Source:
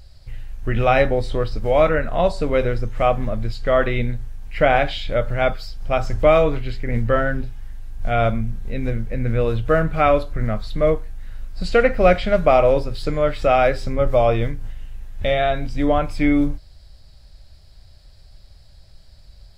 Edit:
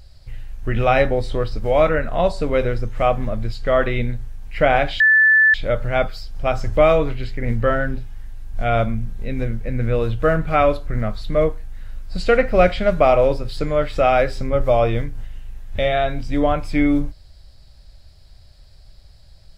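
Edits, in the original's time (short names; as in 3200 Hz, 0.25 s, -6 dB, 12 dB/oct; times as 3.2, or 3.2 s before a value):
5 add tone 1750 Hz -9.5 dBFS 0.54 s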